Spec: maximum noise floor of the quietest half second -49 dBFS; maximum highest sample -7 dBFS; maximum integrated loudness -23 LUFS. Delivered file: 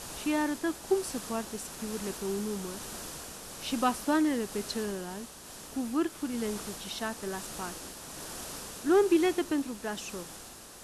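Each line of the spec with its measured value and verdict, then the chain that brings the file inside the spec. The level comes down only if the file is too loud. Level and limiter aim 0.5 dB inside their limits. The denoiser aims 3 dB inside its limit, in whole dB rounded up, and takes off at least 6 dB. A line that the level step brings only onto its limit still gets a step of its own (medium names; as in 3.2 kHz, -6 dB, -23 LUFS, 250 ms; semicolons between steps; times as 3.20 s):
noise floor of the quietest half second -48 dBFS: fail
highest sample -15.5 dBFS: pass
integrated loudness -32.5 LUFS: pass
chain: noise reduction 6 dB, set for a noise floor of -48 dBFS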